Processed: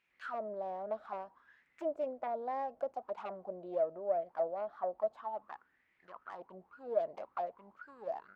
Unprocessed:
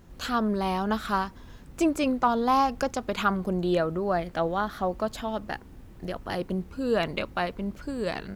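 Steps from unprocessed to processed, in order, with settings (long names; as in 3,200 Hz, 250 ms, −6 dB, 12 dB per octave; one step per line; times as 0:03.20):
phase distortion by the signal itself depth 0.24 ms
envelope filter 620–2,500 Hz, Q 7.8, down, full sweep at −24.5 dBFS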